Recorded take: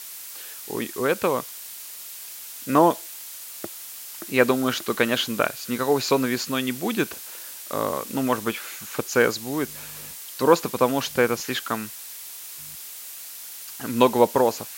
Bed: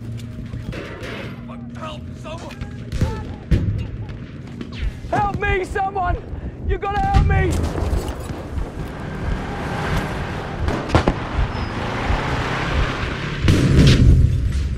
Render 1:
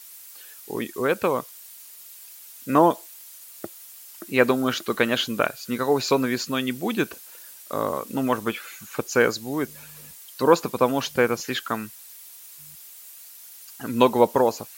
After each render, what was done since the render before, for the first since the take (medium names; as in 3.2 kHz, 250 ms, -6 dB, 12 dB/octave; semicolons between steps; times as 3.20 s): noise reduction 9 dB, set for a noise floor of -39 dBFS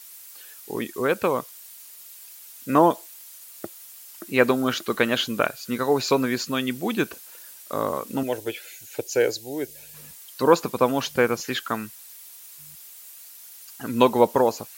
8.23–9.94 s: static phaser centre 480 Hz, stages 4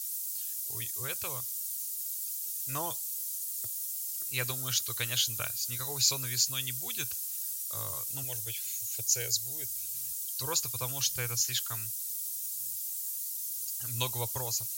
FFT filter 120 Hz 0 dB, 200 Hz -29 dB, 1.7 kHz -15 dB, 6.5 kHz +8 dB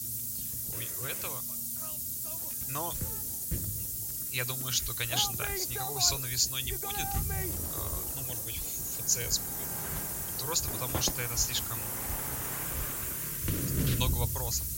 add bed -18.5 dB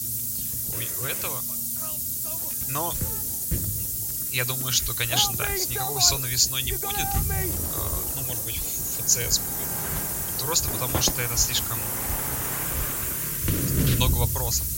trim +7 dB